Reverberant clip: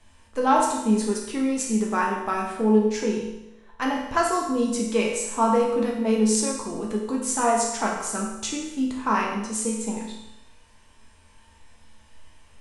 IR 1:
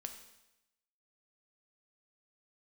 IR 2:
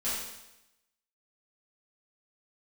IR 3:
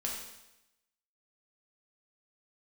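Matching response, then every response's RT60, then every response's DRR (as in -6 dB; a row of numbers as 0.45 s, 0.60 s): 3; 0.90 s, 0.90 s, 0.90 s; 5.5 dB, -12.0 dB, -2.5 dB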